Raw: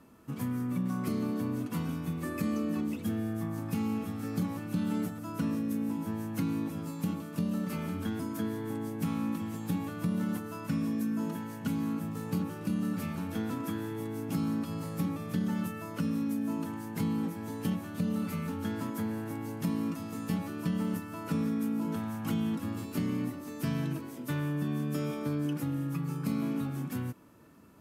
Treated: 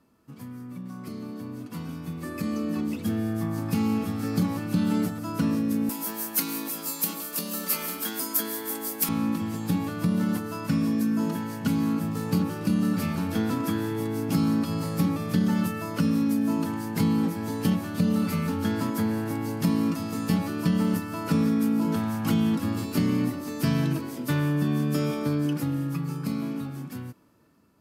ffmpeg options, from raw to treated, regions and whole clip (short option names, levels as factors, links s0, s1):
-filter_complex "[0:a]asettb=1/sr,asplit=3[s0][s1][s2];[s0]atrim=end=5.894[s3];[s1]atrim=start=5.89:end=9.09,asetpts=PTS-STARTPTS,afade=t=in:d=0.004:c=qsin,afade=t=out:st=3.196:d=0.004:c=qsin,highpass=230,aemphasis=mode=production:type=riaa[s4];[s2]atrim=start=9.086[s5];[s3][s4]acrossfade=d=0.004:c1=hsin:c2=qsin[s6];[s6][s5]acrossfade=d=0.004:c1=qsin:c2=hsin,equalizer=f=4700:t=o:w=0.41:g=5.5,dynaudnorm=f=780:g=7:m=5.96,volume=0.447"